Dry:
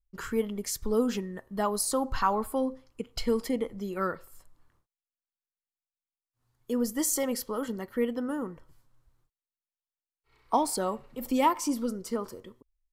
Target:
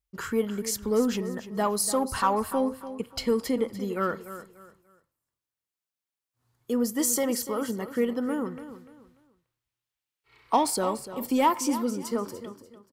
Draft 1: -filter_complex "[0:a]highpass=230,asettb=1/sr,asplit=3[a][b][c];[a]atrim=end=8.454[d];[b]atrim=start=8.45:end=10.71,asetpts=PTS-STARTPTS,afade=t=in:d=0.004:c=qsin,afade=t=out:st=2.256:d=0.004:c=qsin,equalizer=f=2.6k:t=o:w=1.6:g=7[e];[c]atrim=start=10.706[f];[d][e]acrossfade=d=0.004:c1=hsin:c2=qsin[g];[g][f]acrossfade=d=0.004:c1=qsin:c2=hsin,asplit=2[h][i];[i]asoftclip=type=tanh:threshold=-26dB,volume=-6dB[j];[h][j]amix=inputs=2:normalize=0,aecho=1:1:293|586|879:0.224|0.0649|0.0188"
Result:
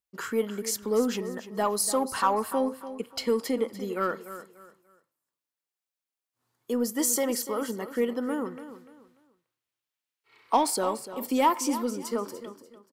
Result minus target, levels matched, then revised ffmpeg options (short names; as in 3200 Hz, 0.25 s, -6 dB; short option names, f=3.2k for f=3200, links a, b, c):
125 Hz band -4.0 dB
-filter_complex "[0:a]highpass=69,asettb=1/sr,asplit=3[a][b][c];[a]atrim=end=8.454[d];[b]atrim=start=8.45:end=10.71,asetpts=PTS-STARTPTS,afade=t=in:d=0.004:c=qsin,afade=t=out:st=2.256:d=0.004:c=qsin,equalizer=f=2.6k:t=o:w=1.6:g=7[e];[c]atrim=start=10.706[f];[d][e]acrossfade=d=0.004:c1=hsin:c2=qsin[g];[g][f]acrossfade=d=0.004:c1=qsin:c2=hsin,asplit=2[h][i];[i]asoftclip=type=tanh:threshold=-26dB,volume=-6dB[j];[h][j]amix=inputs=2:normalize=0,aecho=1:1:293|586|879:0.224|0.0649|0.0188"